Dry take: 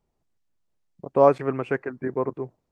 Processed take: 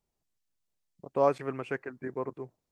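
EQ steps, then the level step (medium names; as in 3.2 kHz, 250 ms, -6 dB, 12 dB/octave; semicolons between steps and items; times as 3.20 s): treble shelf 2.5 kHz +10.5 dB; -9.0 dB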